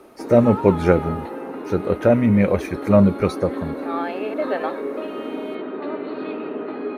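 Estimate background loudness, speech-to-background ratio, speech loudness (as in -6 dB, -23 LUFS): -29.0 LUFS, 10.5 dB, -18.5 LUFS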